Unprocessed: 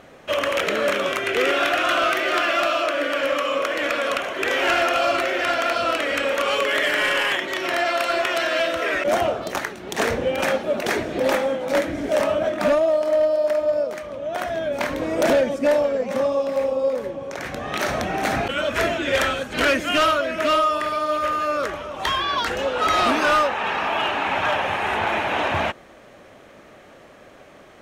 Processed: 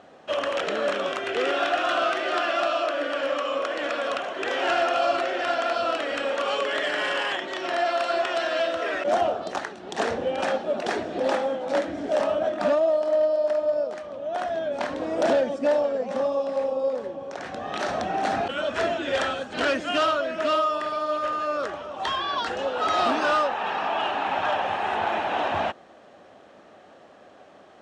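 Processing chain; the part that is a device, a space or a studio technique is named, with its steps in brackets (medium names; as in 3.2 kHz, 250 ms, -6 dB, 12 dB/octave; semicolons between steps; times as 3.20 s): car door speaker (cabinet simulation 100–7700 Hz, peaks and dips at 130 Hz -8 dB, 750 Hz +6 dB, 2.2 kHz -7 dB, 6.4 kHz -4 dB); trim -4.5 dB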